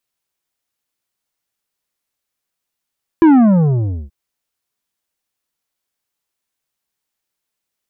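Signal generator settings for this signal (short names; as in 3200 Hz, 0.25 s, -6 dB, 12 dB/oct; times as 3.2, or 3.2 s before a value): sub drop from 340 Hz, over 0.88 s, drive 9 dB, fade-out 0.84 s, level -6 dB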